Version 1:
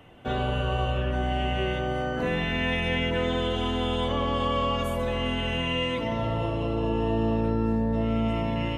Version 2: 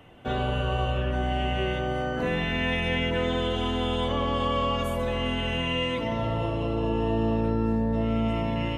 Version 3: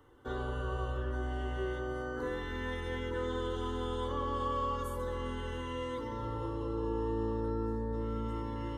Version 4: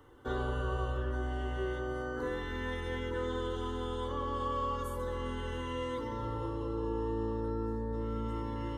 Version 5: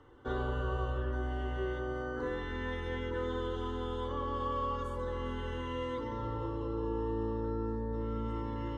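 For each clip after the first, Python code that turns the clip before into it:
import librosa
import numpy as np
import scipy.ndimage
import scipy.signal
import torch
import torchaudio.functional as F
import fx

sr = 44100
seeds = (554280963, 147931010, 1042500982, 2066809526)

y1 = x
y2 = fx.fixed_phaser(y1, sr, hz=670.0, stages=6)
y2 = y2 * 10.0 ** (-5.5 / 20.0)
y3 = fx.rider(y2, sr, range_db=10, speed_s=2.0)
y4 = fx.air_absorb(y3, sr, metres=89.0)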